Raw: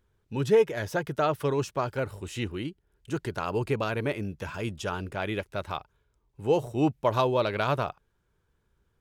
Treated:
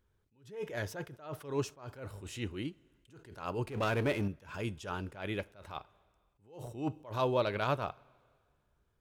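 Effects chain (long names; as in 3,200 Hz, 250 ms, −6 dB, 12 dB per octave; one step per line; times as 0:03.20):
coupled-rooms reverb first 0.25 s, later 2 s, from −18 dB, DRR 17 dB
0:03.67–0:04.28: power curve on the samples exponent 0.7
level that may rise only so fast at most 130 dB per second
level −4.5 dB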